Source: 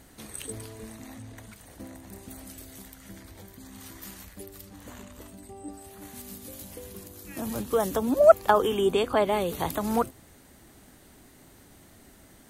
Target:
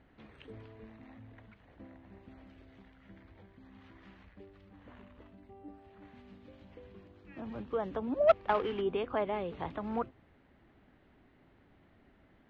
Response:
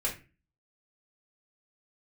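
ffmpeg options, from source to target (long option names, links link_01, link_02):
-filter_complex "[0:a]asplit=3[link_01][link_02][link_03];[link_01]afade=type=out:start_time=8.27:duration=0.02[link_04];[link_02]acrusher=bits=2:mode=log:mix=0:aa=0.000001,afade=type=in:start_time=8.27:duration=0.02,afade=type=out:start_time=8.8:duration=0.02[link_05];[link_03]afade=type=in:start_time=8.8:duration=0.02[link_06];[link_04][link_05][link_06]amix=inputs=3:normalize=0,lowpass=frequency=2900:width=0.5412,lowpass=frequency=2900:width=1.3066,volume=-9dB"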